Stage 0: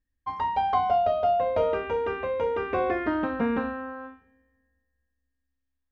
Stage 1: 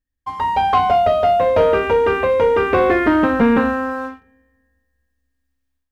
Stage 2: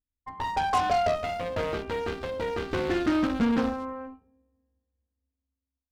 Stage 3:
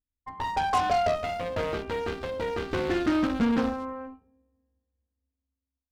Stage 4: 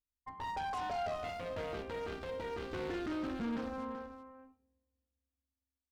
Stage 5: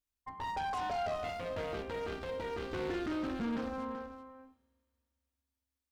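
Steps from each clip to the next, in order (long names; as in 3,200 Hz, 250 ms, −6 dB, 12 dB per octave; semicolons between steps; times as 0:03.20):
dynamic equaliser 720 Hz, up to −5 dB, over −34 dBFS, Q 2.4; automatic gain control gain up to 10 dB; leveller curve on the samples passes 1
adaptive Wiener filter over 25 samples; gain on a spectral selection 0:01.16–0:03.58, 370–1,200 Hz −8 dB; harmonic generator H 8 −19 dB, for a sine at −6.5 dBFS; level −8.5 dB
no processing that can be heard
brickwall limiter −25 dBFS, peak gain reduction 10.5 dB; on a send: single-tap delay 381 ms −11 dB; on the sum: level −7 dB
convolution reverb RT60 2.7 s, pre-delay 3 ms, DRR 21.5 dB; level +2 dB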